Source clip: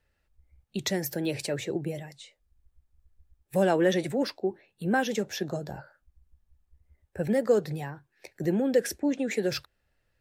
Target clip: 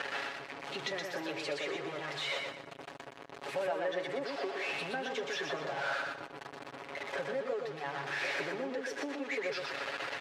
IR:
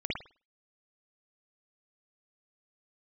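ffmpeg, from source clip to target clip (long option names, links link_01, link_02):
-af "aeval=exprs='val(0)+0.5*0.0376*sgn(val(0))':channel_layout=same,aecho=1:1:7.2:0.7,acompressor=threshold=-32dB:ratio=12,highpass=470,lowpass=3200,aecho=1:1:121|242|363|484:0.631|0.196|0.0606|0.0188,volume=2dB"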